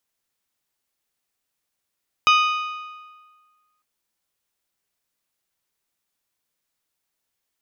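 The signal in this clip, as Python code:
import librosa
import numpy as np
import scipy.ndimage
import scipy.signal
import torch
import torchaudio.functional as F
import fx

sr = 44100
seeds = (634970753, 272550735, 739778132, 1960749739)

y = fx.strike_metal(sr, length_s=1.55, level_db=-12.5, body='bell', hz=1240.0, decay_s=1.57, tilt_db=4, modes=6)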